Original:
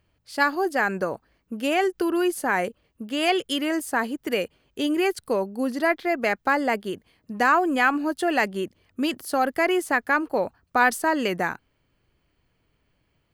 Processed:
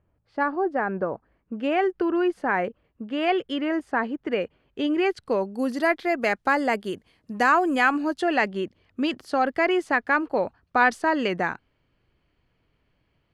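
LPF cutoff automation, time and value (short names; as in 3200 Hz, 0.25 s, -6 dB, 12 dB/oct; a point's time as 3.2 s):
0.98 s 1200 Hz
1.64 s 2200 Hz
4.43 s 2200 Hz
5.32 s 4300 Hz
5.64 s 9900 Hz
7.93 s 9900 Hz
8.36 s 4400 Hz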